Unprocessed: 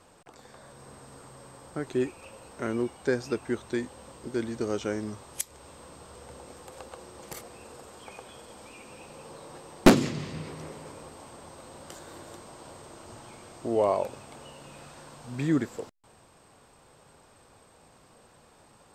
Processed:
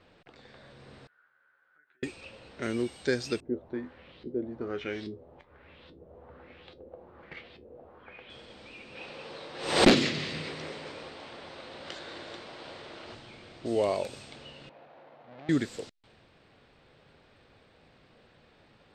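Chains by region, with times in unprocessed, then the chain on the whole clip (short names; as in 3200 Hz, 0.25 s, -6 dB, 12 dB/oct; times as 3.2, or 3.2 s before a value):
1.07–2.03 compressor 12:1, threshold -40 dBFS + band-pass 1500 Hz, Q 15 + doubler 13 ms -2 dB
3.4–8.3 LFO low-pass saw up 1.2 Hz 330–4300 Hz + resonator 83 Hz, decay 0.16 s, mix 70%
8.95–13.15 overdrive pedal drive 14 dB, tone 1900 Hz, clips at -8 dBFS + backwards sustainer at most 87 dB/s
14.69–15.49 half-waves squared off + compressor 4:1, threshold -32 dBFS + band-pass 730 Hz, Q 2.2
whole clip: LPF 12000 Hz 24 dB/oct; low-pass opened by the level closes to 2200 Hz, open at -29 dBFS; graphic EQ 1000/2000/4000 Hz -8/+4/+10 dB; gain -1 dB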